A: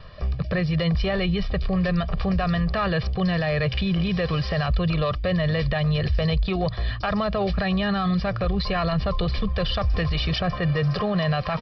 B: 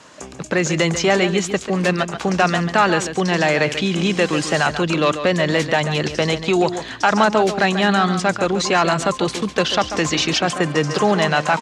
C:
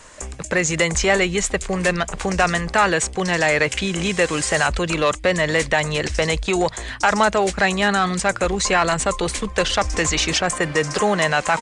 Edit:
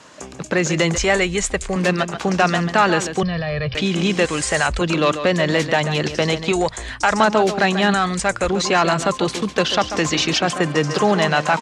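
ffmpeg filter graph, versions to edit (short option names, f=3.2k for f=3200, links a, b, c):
-filter_complex "[2:a]asplit=4[a][b][c][d];[1:a]asplit=6[e][f][g][h][i][j];[e]atrim=end=0.982[k];[a]atrim=start=0.978:end=1.762[l];[f]atrim=start=1.758:end=3.232[m];[0:a]atrim=start=3.228:end=3.752[n];[g]atrim=start=3.748:end=4.252[o];[b]atrim=start=4.248:end=4.812[p];[h]atrim=start=4.808:end=6.522[q];[c]atrim=start=6.518:end=7.202[r];[i]atrim=start=7.198:end=7.942[s];[d]atrim=start=7.938:end=8.492[t];[j]atrim=start=8.488[u];[k][l]acrossfade=d=0.004:c1=hsin:c2=hsin[v];[v][m]acrossfade=d=0.004:c1=hsin:c2=hsin[w];[w][n]acrossfade=d=0.004:c1=hsin:c2=hsin[x];[x][o]acrossfade=d=0.004:c1=hsin:c2=hsin[y];[y][p]acrossfade=d=0.004:c1=hsin:c2=hsin[z];[z][q]acrossfade=d=0.004:c1=hsin:c2=hsin[aa];[aa][r]acrossfade=d=0.004:c1=hsin:c2=hsin[ab];[ab][s]acrossfade=d=0.004:c1=hsin:c2=hsin[ac];[ac][t]acrossfade=d=0.004:c1=hsin:c2=hsin[ad];[ad][u]acrossfade=d=0.004:c1=hsin:c2=hsin"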